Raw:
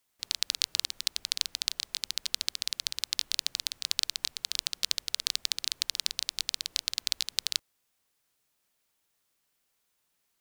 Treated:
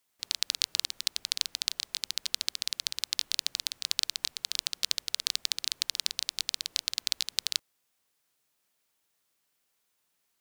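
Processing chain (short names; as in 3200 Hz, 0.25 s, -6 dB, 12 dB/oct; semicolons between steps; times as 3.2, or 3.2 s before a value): low shelf 82 Hz -7.5 dB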